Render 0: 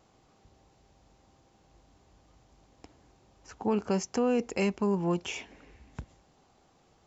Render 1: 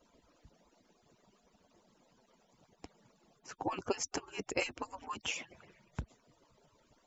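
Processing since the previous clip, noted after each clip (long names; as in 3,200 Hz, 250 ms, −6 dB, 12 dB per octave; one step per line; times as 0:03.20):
harmonic-percussive split with one part muted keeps percussive
level +1 dB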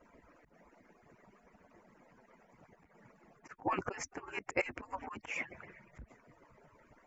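high shelf with overshoot 2,700 Hz −9.5 dB, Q 3
volume swells 121 ms
level +5 dB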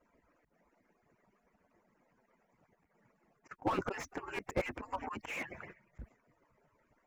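noise gate −53 dBFS, range −13 dB
slew-rate limiting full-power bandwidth 18 Hz
level +3.5 dB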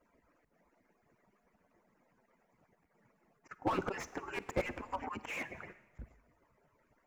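four-comb reverb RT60 1.1 s, DRR 15.5 dB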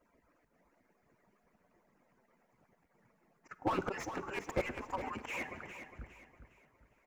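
repeating echo 408 ms, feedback 34%, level −10 dB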